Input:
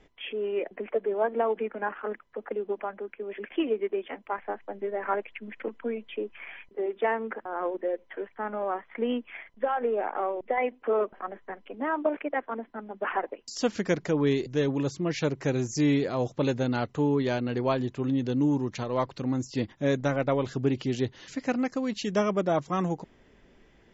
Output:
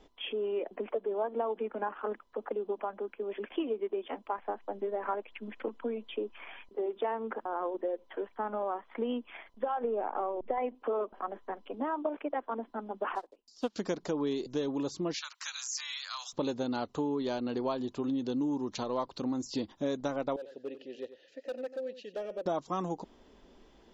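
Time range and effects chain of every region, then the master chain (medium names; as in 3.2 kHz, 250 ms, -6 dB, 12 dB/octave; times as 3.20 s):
9.84–10.75 s: low-pass 3.4 kHz + bass shelf 150 Hz +10.5 dB
13.15–13.76 s: block-companded coder 5-bit + low-pass 5.9 kHz + upward expansion 2.5:1, over -34 dBFS
15.14–16.33 s: steep high-pass 1.2 kHz + three bands compressed up and down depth 100%
20.36–22.46 s: vowel filter e + overload inside the chain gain 32 dB + delay 92 ms -13 dB
whole clip: graphic EQ 125/250/1000/2000/4000 Hz -11/+3/+5/-10/+6 dB; compression 3:1, threshold -31 dBFS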